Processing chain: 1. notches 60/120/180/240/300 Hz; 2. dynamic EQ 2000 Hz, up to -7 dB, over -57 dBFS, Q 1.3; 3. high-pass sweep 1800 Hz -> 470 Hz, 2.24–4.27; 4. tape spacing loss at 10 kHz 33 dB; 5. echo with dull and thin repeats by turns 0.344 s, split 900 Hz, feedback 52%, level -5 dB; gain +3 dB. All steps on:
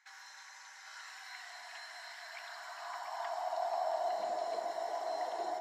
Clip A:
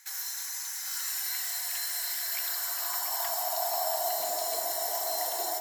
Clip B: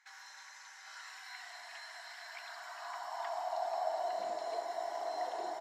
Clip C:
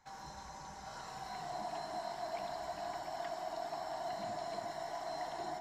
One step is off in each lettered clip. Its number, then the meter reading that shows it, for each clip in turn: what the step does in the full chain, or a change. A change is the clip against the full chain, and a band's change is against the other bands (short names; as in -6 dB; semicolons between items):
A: 4, 8 kHz band +20.0 dB; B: 5, echo-to-direct -8.5 dB to none; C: 3, 250 Hz band +9.5 dB